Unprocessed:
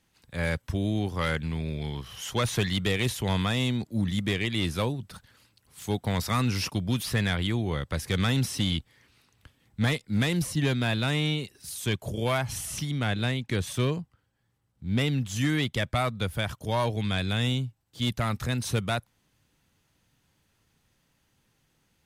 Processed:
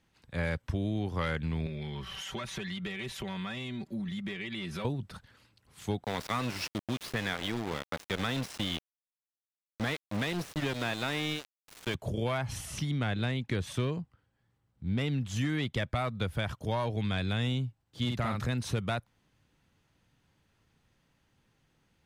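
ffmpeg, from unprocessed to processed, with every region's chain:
ffmpeg -i in.wav -filter_complex "[0:a]asettb=1/sr,asplit=3[link_01][link_02][link_03];[link_01]atrim=end=1.664[link_04];[link_02]atrim=start=1.66:end=4.85,asetpts=PTS-STARTPTS,afade=type=in:duration=0.004:curve=qsin,afade=type=out:start_time=3.186:duration=0.004:curve=qsin,equalizer=frequency=2100:width_type=o:width=1.6:gain=4.5,aecho=1:1:5.2:0.8,atrim=end_sample=140679,acompressor=threshold=-33dB:ratio=10:attack=3.2:release=140:knee=1:detection=peak[link_05];[link_03]atrim=start=4.846[link_06];[link_04][link_05]acrossfade=duration=0.004:curve1=hsin:curve2=qsin[link_07];[link_07][link_06]acrossfade=duration=0.004:curve1=qsin:curve2=hsin,asettb=1/sr,asplit=3[link_08][link_09][link_10];[link_08]atrim=end=6.044[link_11];[link_09]atrim=start=6.04:end=11.95,asetpts=PTS-STARTPTS,afade=type=in:duration=0.004:curve=qsin,afade=type=out:start_time=5.906:duration=0.004:curve=qsin,highpass=frequency=290:poles=1,aeval=exprs='val(0)*gte(abs(val(0)),0.0299)':channel_layout=same[link_12];[link_10]atrim=start=11.946[link_13];[link_11][link_12]acrossfade=duration=0.004:curve1=hsin:curve2=qsin[link_14];[link_14][link_13]acrossfade=duration=0.004:curve1=qsin:curve2=hsin,asettb=1/sr,asplit=3[link_15][link_16][link_17];[link_15]atrim=end=18.054[link_18];[link_16]atrim=start=18.05:end=18.45,asetpts=PTS-STARTPTS,afade=type=in:duration=0.004:curve=qsin,afade=type=out:start_time=0.396:duration=0.004:curve=qsin,highpass=61,asplit=2[link_19][link_20];[link_20]adelay=49,volume=-4.5dB[link_21];[link_19][link_21]amix=inputs=2:normalize=0,atrim=end_sample=17640[link_22];[link_17]atrim=start=18.446[link_23];[link_18][link_22]acrossfade=duration=0.004:curve1=hsin:curve2=qsin[link_24];[link_24][link_23]acrossfade=duration=0.004:curve1=qsin:curve2=hsin,lowpass=frequency=3400:poles=1,acompressor=threshold=-27dB:ratio=6" out.wav

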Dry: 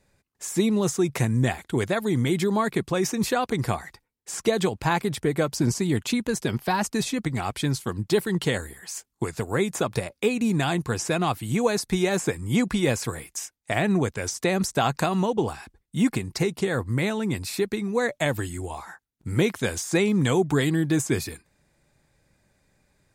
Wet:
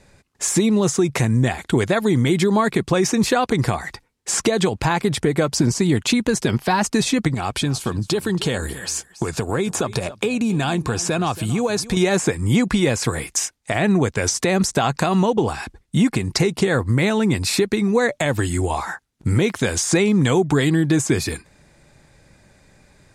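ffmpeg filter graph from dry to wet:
ffmpeg -i in.wav -filter_complex "[0:a]asettb=1/sr,asplit=3[link_01][link_02][link_03];[link_01]atrim=end=7.344[link_04];[link_02]atrim=start=7.34:end=11.97,asetpts=PTS-STARTPTS,afade=type=in:duration=0.004:curve=qsin,afade=type=out:start_time=4.626:duration=0.004:curve=qsin,bandreject=frequency=2000:width=7.5,acompressor=threshold=-34dB:ratio=2.5:attack=3.2:release=140:knee=1:detection=peak,aecho=1:1:277:0.126,atrim=end_sample=204183[link_05];[link_03]atrim=start=11.966[link_06];[link_04][link_05]acrossfade=duration=0.004:curve1=hsin:curve2=qsin[link_07];[link_07][link_06]acrossfade=duration=0.004:curve1=qsin:curve2=hsin,lowpass=9600,acompressor=threshold=-30dB:ratio=3,alimiter=level_in=20dB:limit=-1dB:release=50:level=0:latency=1,volume=-6.5dB" out.wav

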